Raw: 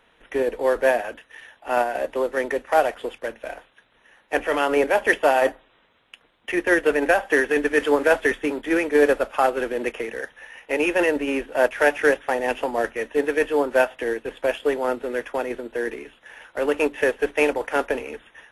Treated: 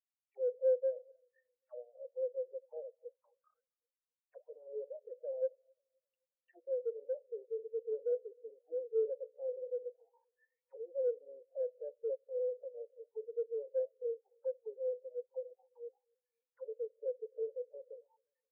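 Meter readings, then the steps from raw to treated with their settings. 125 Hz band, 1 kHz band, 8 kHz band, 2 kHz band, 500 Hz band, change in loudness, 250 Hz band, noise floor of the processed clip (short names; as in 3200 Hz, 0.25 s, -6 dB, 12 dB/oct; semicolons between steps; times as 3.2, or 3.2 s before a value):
n/a, under -40 dB, under -40 dB, under -40 dB, -16.0 dB, -17.5 dB, under -40 dB, under -85 dBFS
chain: high shelf 3400 Hz -9 dB; half-wave rectifier; in parallel at +0.5 dB: compressor, threshold -34 dBFS, peak gain reduction 18.5 dB; on the sum: Schroeder reverb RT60 0.98 s, combs from 30 ms, DRR 15 dB; auto-wah 500–3400 Hz, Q 8.5, down, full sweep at -20 dBFS; soft clip -28.5 dBFS, distortion -13 dB; on a send: tape echo 0.263 s, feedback 69%, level -13 dB; on the sum: spectral expander 2.5:1; gain +4 dB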